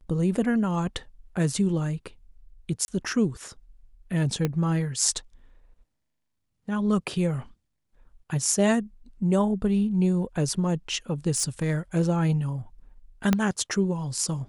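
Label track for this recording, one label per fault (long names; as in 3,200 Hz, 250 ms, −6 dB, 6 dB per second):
2.850000	2.880000	drop-out 30 ms
4.450000	4.450000	click −12 dBFS
11.350000	11.740000	clipping −19.5 dBFS
13.330000	13.330000	click −8 dBFS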